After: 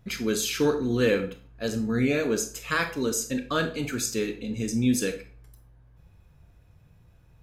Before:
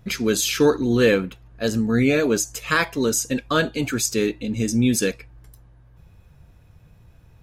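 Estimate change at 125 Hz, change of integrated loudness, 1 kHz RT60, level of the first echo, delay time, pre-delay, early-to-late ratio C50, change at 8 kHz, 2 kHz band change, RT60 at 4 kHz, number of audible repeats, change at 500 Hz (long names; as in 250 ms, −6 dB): −5.5 dB, −5.5 dB, 0.40 s, no echo audible, no echo audible, 24 ms, 11.0 dB, −6.0 dB, −6.0 dB, 0.35 s, no echo audible, −6.0 dB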